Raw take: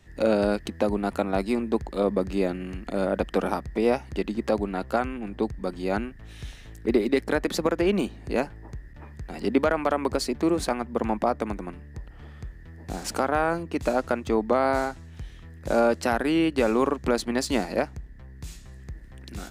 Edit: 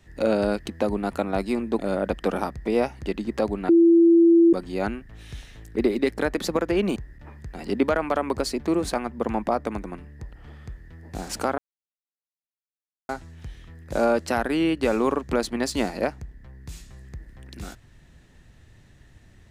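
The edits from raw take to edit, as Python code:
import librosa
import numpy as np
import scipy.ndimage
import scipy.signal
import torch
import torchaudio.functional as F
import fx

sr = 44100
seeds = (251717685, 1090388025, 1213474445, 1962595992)

y = fx.edit(x, sr, fx.cut(start_s=1.79, length_s=1.1),
    fx.bleep(start_s=4.79, length_s=0.84, hz=336.0, db=-11.5),
    fx.cut(start_s=8.06, length_s=0.65),
    fx.silence(start_s=13.33, length_s=1.51), tone=tone)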